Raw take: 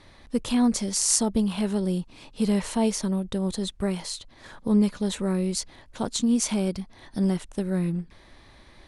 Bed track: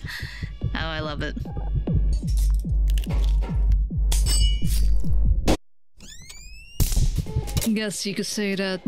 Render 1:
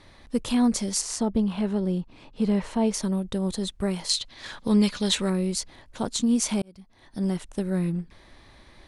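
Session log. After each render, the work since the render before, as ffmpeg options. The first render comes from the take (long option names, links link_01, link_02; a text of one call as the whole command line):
ffmpeg -i in.wav -filter_complex "[0:a]asettb=1/sr,asplit=3[link_01][link_02][link_03];[link_01]atrim=end=1.014[link_04];[link_02]atrim=start=1.01:end=2.94,asetpts=PTS-STARTPTS,afade=type=in:duration=0.004:curve=qsin,afade=type=out:start_time=1.926:duration=0.004:curve=qsin,aemphasis=mode=reproduction:type=75kf[link_05];[link_03]atrim=start=2.936[link_06];[link_04][link_05]acrossfade=duration=0.004:curve1=hsin:curve2=qsin[link_07];[link_07][link_06]acrossfade=duration=0.004:curve1=qsin:curve2=hsin,asettb=1/sr,asplit=3[link_08][link_09][link_10];[link_08]atrim=end=4.094[link_11];[link_09]atrim=start=4.09:end=5.3,asetpts=PTS-STARTPTS,afade=type=in:duration=0.004:curve=qsin,afade=type=out:start_time=1.206:duration=0.004:curve=qsin,equalizer=frequency=3800:width=0.47:gain=11.5[link_12];[link_10]atrim=start=5.296[link_13];[link_11][link_12]acrossfade=duration=0.004:curve1=hsin:curve2=qsin[link_14];[link_14][link_13]acrossfade=duration=0.004:curve1=qsin:curve2=hsin,asplit=2[link_15][link_16];[link_15]atrim=end=6.62,asetpts=PTS-STARTPTS,afade=type=out:start_time=6.616:duration=0.004:curve=hsin[link_17];[link_16]atrim=start=6.62,asetpts=PTS-STARTPTS,afade=type=in:duration=0.88[link_18];[link_17][link_18]concat=n=2:v=0:a=1" out.wav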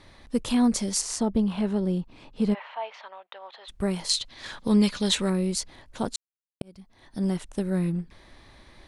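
ffmpeg -i in.wav -filter_complex "[0:a]asplit=3[link_01][link_02][link_03];[link_01]afade=type=out:start_time=2.53:duration=0.02[link_04];[link_02]asuperpass=centerf=1500:order=8:qfactor=0.57,afade=type=in:start_time=2.53:duration=0.02,afade=type=out:start_time=3.68:duration=0.02[link_05];[link_03]afade=type=in:start_time=3.68:duration=0.02[link_06];[link_04][link_05][link_06]amix=inputs=3:normalize=0,asplit=3[link_07][link_08][link_09];[link_07]atrim=end=6.16,asetpts=PTS-STARTPTS,afade=type=out:start_time=6.156:duration=0.004:curve=hsin[link_10];[link_08]atrim=start=6.16:end=6.61,asetpts=PTS-STARTPTS,volume=0[link_11];[link_09]atrim=start=6.61,asetpts=PTS-STARTPTS,afade=type=in:duration=0.004:curve=hsin[link_12];[link_10][link_11][link_12]concat=n=3:v=0:a=1" out.wav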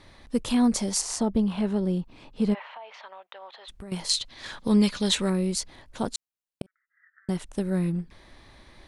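ffmpeg -i in.wav -filter_complex "[0:a]asettb=1/sr,asplit=3[link_01][link_02][link_03];[link_01]atrim=end=0.754[link_04];[link_02]atrim=start=0.75:end=1.22,asetpts=PTS-STARTPTS,afade=type=in:duration=0.004:curve=qsin,afade=type=out:start_time=0.466:duration=0.004:curve=qsin,equalizer=frequency=800:width=1.5:gain=6.5[link_05];[link_03]atrim=start=1.216[link_06];[link_04][link_05]acrossfade=duration=0.004:curve1=hsin:curve2=qsin[link_07];[link_07][link_06]acrossfade=duration=0.004:curve1=qsin:curve2=hsin,asettb=1/sr,asplit=3[link_08][link_09][link_10];[link_08]atrim=end=2.764[link_11];[link_09]atrim=start=2.76:end=3.92,asetpts=PTS-STARTPTS,afade=type=in:duration=0.004:curve=qsin,afade=type=out:start_time=1.156:duration=0.004:curve=qsin,acompressor=threshold=-38dB:ratio=6:attack=3.2:release=140:knee=1:detection=peak[link_12];[link_10]atrim=start=3.916[link_13];[link_11][link_12]acrossfade=duration=0.004:curve1=hsin:curve2=qsin[link_14];[link_14][link_13]acrossfade=duration=0.004:curve1=qsin:curve2=hsin,asettb=1/sr,asplit=3[link_15][link_16][link_17];[link_15]atrim=end=6.664[link_18];[link_16]atrim=start=6.66:end=7.29,asetpts=PTS-STARTPTS,afade=type=in:duration=0.004:curve=qsin,afade=type=out:start_time=0.626:duration=0.004:curve=qsin,asuperpass=centerf=1600:order=12:qfactor=2.2[link_19];[link_17]atrim=start=7.286[link_20];[link_18][link_19]acrossfade=duration=0.004:curve1=hsin:curve2=qsin[link_21];[link_21][link_20]acrossfade=duration=0.004:curve1=qsin:curve2=hsin" out.wav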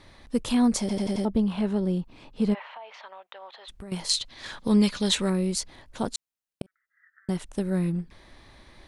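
ffmpeg -i in.wav -filter_complex "[0:a]asplit=6[link_01][link_02][link_03][link_04][link_05][link_06];[link_01]atrim=end=0.892[link_07];[link_02]atrim=start=0.798:end=0.892[link_08];[link_03]atrim=start=0.798:end=0.892[link_09];[link_04]atrim=start=0.798:end=0.892[link_10];[link_05]atrim=start=0.798:end=0.892[link_11];[link_06]atrim=start=1.248[link_12];[link_07][link_08]acrossfade=duration=0.004:curve1=hsin:curve2=hsin[link_13];[link_13][link_09]acrossfade=duration=0.004:curve1=hsin:curve2=hsin[link_14];[link_14][link_10]acrossfade=duration=0.004:curve1=hsin:curve2=hsin[link_15];[link_15][link_11]acrossfade=duration=0.004:curve1=hsin:curve2=hsin[link_16];[link_16][link_12]acrossfade=duration=0.004:curve1=hsin:curve2=hsin" out.wav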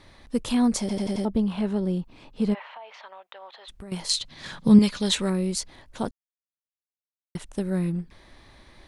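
ffmpeg -i in.wav -filter_complex "[0:a]asettb=1/sr,asplit=3[link_01][link_02][link_03];[link_01]atrim=end=4.224[link_04];[link_02]atrim=start=4.22:end=4.79,asetpts=PTS-STARTPTS,afade=type=in:duration=0.004:curve=qsin,afade=type=out:start_time=0.566:duration=0.004:curve=qsin,equalizer=frequency=160:width_type=o:width=0.77:gain=14.5[link_05];[link_03]atrim=start=4.786[link_06];[link_04][link_05]acrossfade=duration=0.004:curve1=hsin:curve2=qsin[link_07];[link_07][link_06]acrossfade=duration=0.004:curve1=qsin:curve2=hsin,asplit=3[link_08][link_09][link_10];[link_08]atrim=end=6.11,asetpts=PTS-STARTPTS,afade=type=out:start_time=6.106:duration=0.004:curve=hsin[link_11];[link_09]atrim=start=6.11:end=7.35,asetpts=PTS-STARTPTS,volume=0[link_12];[link_10]atrim=start=7.35,asetpts=PTS-STARTPTS,afade=type=in:duration=0.004:curve=hsin[link_13];[link_11][link_12][link_13]concat=n=3:v=0:a=1" out.wav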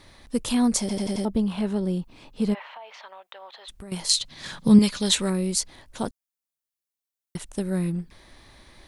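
ffmpeg -i in.wav -af "highshelf=frequency=5700:gain=8.5" out.wav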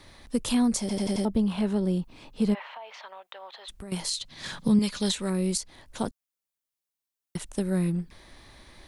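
ffmpeg -i in.wav -filter_complex "[0:a]alimiter=limit=-13.5dB:level=0:latency=1:release=349,acrossover=split=260[link_01][link_02];[link_02]acompressor=threshold=-25dB:ratio=6[link_03];[link_01][link_03]amix=inputs=2:normalize=0" out.wav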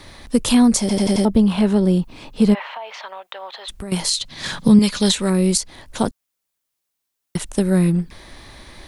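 ffmpeg -i in.wav -af "volume=10dB" out.wav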